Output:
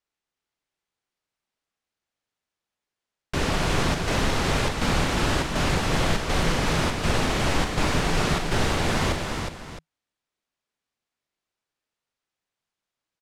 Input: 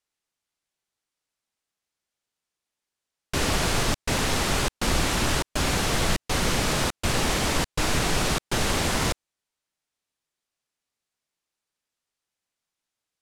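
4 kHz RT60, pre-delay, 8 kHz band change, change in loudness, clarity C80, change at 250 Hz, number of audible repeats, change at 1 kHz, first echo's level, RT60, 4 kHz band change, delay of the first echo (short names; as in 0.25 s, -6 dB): none, none, -5.0 dB, 0.0 dB, none, +2.5 dB, 4, +1.5 dB, -9.5 dB, none, -1.5 dB, 42 ms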